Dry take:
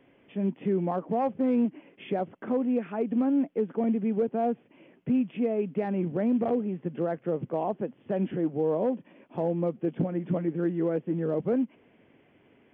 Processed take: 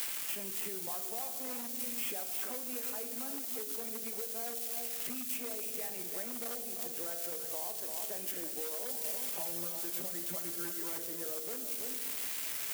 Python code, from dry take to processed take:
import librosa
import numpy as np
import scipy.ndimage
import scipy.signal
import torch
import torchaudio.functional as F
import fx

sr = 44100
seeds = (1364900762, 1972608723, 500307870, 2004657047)

y = x + 0.5 * 10.0 ** (-29.5 / 20.0) * np.diff(np.sign(x), prepend=np.sign(x[:1]))
y = y + 10.0 ** (-10.0 / 20.0) * np.pad(y, (int(332 * sr / 1000.0), 0))[:len(y)]
y = fx.rev_fdn(y, sr, rt60_s=1.2, lf_ratio=1.55, hf_ratio=0.75, size_ms=13.0, drr_db=7.0)
y = np.clip(10.0 ** (18.0 / 20.0) * y, -1.0, 1.0) / 10.0 ** (18.0 / 20.0)
y = scipy.signal.sosfilt(scipy.signal.butter(2, 190.0, 'highpass', fs=sr, output='sos'), y)
y = np.diff(y, prepend=0.0)
y = fx.leveller(y, sr, passes=2)
y = fx.comb(y, sr, ms=5.1, depth=0.95, at=(8.89, 10.98))
y = fx.band_squash(y, sr, depth_pct=100)
y = F.gain(torch.from_numpy(y), -3.0).numpy()